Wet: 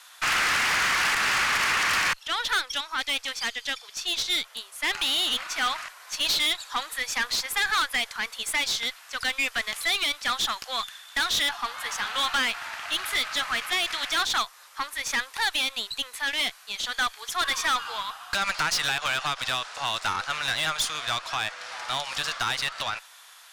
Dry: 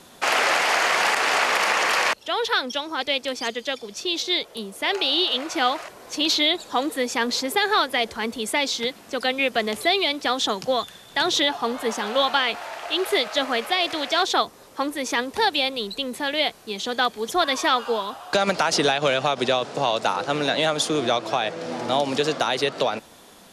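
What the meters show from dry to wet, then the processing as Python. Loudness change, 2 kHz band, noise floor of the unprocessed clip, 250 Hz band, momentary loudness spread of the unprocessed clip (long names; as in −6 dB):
−3.5 dB, −1.0 dB, −48 dBFS, −15.5 dB, 8 LU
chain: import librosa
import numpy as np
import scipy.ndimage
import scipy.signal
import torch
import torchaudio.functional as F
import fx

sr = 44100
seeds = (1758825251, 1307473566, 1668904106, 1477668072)

y = fx.ladder_highpass(x, sr, hz=1000.0, resonance_pct=25)
y = fx.tube_stage(y, sr, drive_db=28.0, bias=0.4)
y = y * 10.0 ** (8.0 / 20.0)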